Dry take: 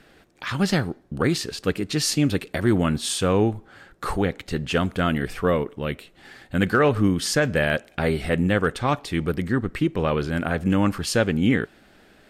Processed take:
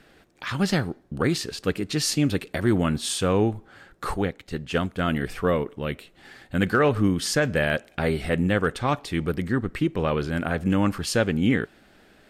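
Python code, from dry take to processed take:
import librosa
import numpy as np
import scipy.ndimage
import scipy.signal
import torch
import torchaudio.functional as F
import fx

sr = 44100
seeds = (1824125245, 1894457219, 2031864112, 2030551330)

y = fx.upward_expand(x, sr, threshold_db=-31.0, expansion=1.5, at=(4.14, 5.08))
y = F.gain(torch.from_numpy(y), -1.5).numpy()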